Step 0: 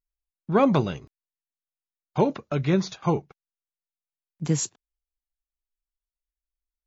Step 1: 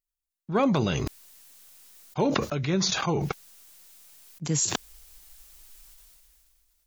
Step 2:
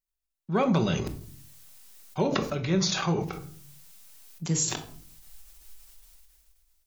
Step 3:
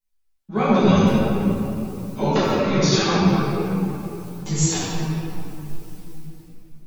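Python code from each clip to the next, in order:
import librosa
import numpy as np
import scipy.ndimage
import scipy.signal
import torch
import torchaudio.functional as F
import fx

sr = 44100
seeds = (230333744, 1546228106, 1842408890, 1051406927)

y1 = fx.high_shelf(x, sr, hz=3600.0, db=9.5)
y1 = fx.sustainer(y1, sr, db_per_s=21.0)
y1 = y1 * 10.0 ** (-5.0 / 20.0)
y2 = fx.room_shoebox(y1, sr, seeds[0], volume_m3=530.0, walls='furnished', distance_m=1.1)
y2 = fx.end_taper(y2, sr, db_per_s=120.0)
y2 = y2 * 10.0 ** (-2.0 / 20.0)
y3 = fx.room_shoebox(y2, sr, seeds[1], volume_m3=160.0, walls='hard', distance_m=1.4)
y3 = fx.ensemble(y3, sr)
y3 = y3 * 10.0 ** (1.5 / 20.0)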